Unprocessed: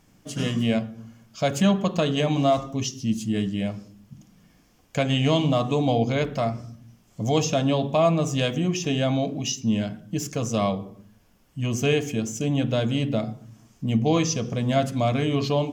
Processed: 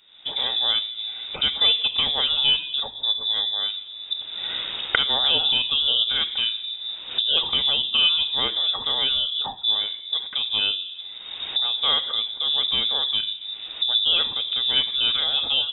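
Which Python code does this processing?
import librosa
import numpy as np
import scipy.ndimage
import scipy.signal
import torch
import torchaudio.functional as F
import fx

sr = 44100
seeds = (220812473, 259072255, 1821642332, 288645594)

y = fx.recorder_agc(x, sr, target_db=-19.0, rise_db_per_s=42.0, max_gain_db=30)
y = fx.freq_invert(y, sr, carrier_hz=3700)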